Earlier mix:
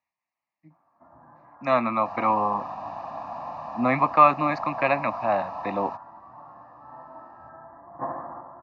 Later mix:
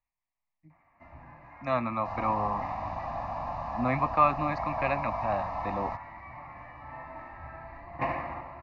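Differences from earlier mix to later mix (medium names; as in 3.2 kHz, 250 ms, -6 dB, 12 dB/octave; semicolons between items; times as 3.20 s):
speech -7.0 dB; first sound: remove steep low-pass 1.6 kHz 72 dB/octave; master: remove high-pass 190 Hz 12 dB/octave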